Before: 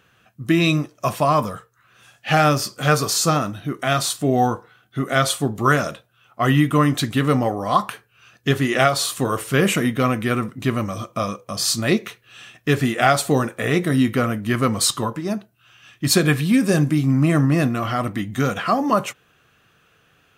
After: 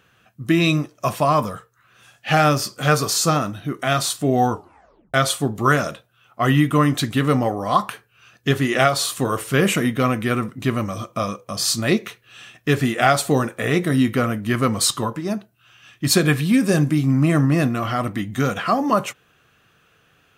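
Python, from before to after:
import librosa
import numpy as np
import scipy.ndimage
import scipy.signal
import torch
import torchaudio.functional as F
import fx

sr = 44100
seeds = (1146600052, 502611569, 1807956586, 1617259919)

y = fx.edit(x, sr, fx.tape_stop(start_s=4.51, length_s=0.63), tone=tone)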